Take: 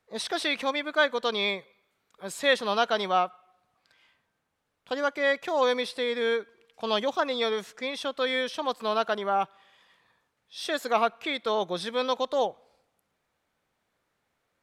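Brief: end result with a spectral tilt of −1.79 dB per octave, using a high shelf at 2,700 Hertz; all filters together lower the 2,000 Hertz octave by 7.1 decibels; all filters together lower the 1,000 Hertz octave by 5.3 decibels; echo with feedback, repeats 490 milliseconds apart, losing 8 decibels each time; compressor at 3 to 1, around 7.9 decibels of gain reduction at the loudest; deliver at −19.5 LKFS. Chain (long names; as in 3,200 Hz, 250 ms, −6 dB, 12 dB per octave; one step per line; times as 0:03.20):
parametric band 1,000 Hz −5.5 dB
parametric band 2,000 Hz −4.5 dB
high-shelf EQ 2,700 Hz −6.5 dB
downward compressor 3 to 1, threshold −33 dBFS
repeating echo 490 ms, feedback 40%, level −8 dB
level +17 dB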